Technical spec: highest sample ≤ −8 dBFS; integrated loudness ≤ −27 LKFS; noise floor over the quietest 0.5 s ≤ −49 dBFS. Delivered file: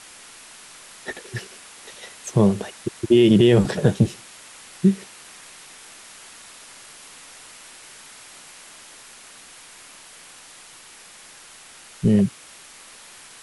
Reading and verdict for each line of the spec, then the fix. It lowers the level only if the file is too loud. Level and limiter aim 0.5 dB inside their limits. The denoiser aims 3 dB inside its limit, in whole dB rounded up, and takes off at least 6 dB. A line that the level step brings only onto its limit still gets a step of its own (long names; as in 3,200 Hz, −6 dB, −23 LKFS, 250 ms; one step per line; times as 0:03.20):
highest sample −5.5 dBFS: out of spec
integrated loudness −20.0 LKFS: out of spec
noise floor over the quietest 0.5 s −46 dBFS: out of spec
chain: level −7.5 dB